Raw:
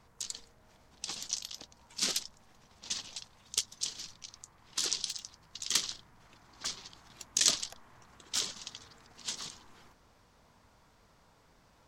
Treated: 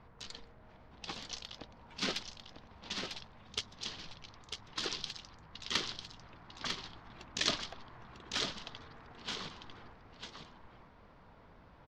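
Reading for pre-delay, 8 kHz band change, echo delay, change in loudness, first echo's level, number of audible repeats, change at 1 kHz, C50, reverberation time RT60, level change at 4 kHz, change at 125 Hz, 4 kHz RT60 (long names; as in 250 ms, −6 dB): no reverb audible, −13.5 dB, 948 ms, −5.5 dB, −6.0 dB, 1, +4.5 dB, no reverb audible, no reverb audible, −3.0 dB, +6.5 dB, no reverb audible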